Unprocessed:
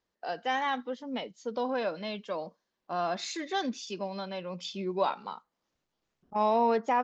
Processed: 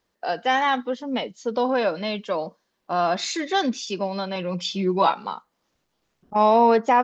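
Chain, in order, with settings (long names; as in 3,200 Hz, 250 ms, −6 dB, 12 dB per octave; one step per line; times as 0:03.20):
0:04.35–0:05.12: comb filter 6.1 ms, depth 64%
level +9 dB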